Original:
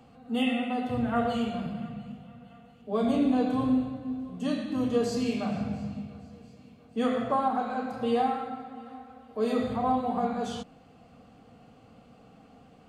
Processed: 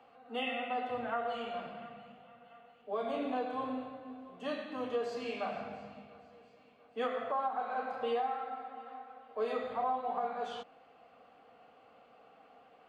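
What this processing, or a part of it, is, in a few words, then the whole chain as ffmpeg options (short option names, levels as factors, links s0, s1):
DJ mixer with the lows and highs turned down: -filter_complex "[0:a]acrossover=split=420 3400:gain=0.0708 1 0.141[s0][s1][s2];[s0][s1][s2]amix=inputs=3:normalize=0,alimiter=level_in=1.12:limit=0.0631:level=0:latency=1:release=409,volume=0.891"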